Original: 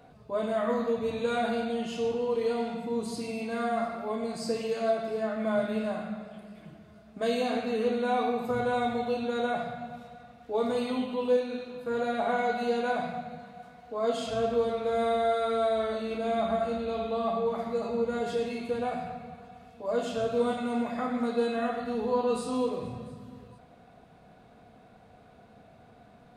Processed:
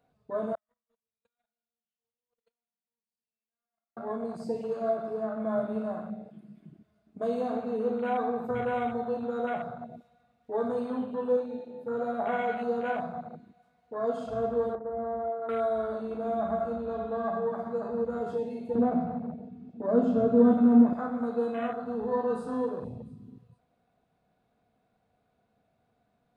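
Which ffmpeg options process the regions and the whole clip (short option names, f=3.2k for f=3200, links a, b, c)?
-filter_complex "[0:a]asettb=1/sr,asplit=3[a][b][c];[a]atrim=end=0.554[d];[b]atrim=start=0.55:end=3.97,asetpts=PTS-STARTPTS,afade=t=in:d=0.004:c=qsin,afade=t=out:st=3.416:d=0.004:c=qsin,agate=range=-44dB:threshold=-23dB:ratio=16:release=100:detection=peak,equalizer=f=330:w=1:g=-15[e];[c]atrim=start=3.966[f];[d][e]acrossfade=d=0.004:c1=hsin:c2=qsin[g];[g][f]acrossfade=d=0.004:c1=qsin:c2=hsin,asettb=1/sr,asplit=3[h][i][j];[h]atrim=end=14.754[k];[i]atrim=start=14.75:end=15.49,asetpts=PTS-STARTPTS,afade=t=in:d=0.004:c=qsin,afade=t=out:st=0.736:d=0.004:c=qsin,lowpass=f=1.1k:w=0.5412,lowpass=f=1.1k:w=1.3066,equalizer=f=450:w=0.31:g=-4.5[l];[j]atrim=start=15.486[m];[k][l]acrossfade=d=0.004:c1=hsin:c2=qsin[n];[n][m]acrossfade=d=0.004:c1=qsin:c2=hsin,asettb=1/sr,asplit=3[o][p][q];[o]atrim=end=18.754[r];[p]atrim=start=18.75:end=20.93,asetpts=PTS-STARTPTS,afade=t=in:d=0.004:c=qsin,afade=t=out:st=2.176:d=0.004:c=qsin,lowpass=6.4k,equalizer=f=250:w=1:g=14.5[s];[q]atrim=start=20.926[t];[r][s]acrossfade=d=0.004:c1=hsin:c2=qsin[u];[u][t]acrossfade=d=0.004:c1=qsin:c2=hsin,highshelf=f=8k:g=4.5,afwtdn=0.0178,volume=-1.5dB"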